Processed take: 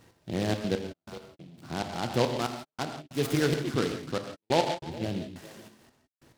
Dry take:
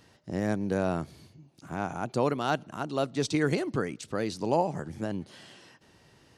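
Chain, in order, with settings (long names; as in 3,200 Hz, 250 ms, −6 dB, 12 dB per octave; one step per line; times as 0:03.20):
high-shelf EQ 4,700 Hz −9.5 dB
echo through a band-pass that steps 138 ms, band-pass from 3,100 Hz, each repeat −1.4 octaves, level −8 dB
gate pattern "x.xxx.x...x..xxx" 140 BPM −60 dB
0:04.79–0:05.35: parametric band 1,500 Hz −7.5 dB 1.8 octaves
reverb whose tail is shaped and stops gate 190 ms flat, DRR 5 dB
short delay modulated by noise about 2,900 Hz, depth 0.08 ms
level +1 dB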